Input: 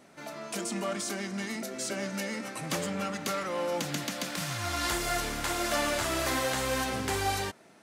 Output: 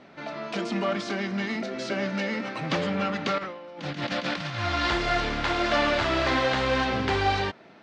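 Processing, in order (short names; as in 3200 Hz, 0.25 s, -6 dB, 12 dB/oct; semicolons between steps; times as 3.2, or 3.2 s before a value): LPF 4300 Hz 24 dB/oct; 3.38–4.58 negative-ratio compressor -38 dBFS, ratio -0.5; gain +6 dB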